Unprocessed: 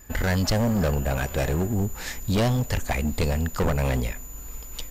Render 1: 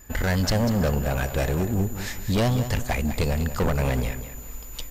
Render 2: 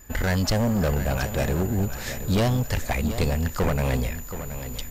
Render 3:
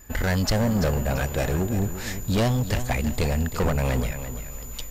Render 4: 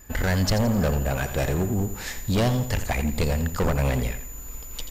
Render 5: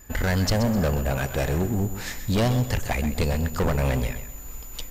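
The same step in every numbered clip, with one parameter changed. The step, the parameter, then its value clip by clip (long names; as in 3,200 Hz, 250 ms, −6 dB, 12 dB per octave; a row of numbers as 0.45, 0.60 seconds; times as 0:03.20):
feedback echo at a low word length, delay time: 195, 724, 339, 85, 128 milliseconds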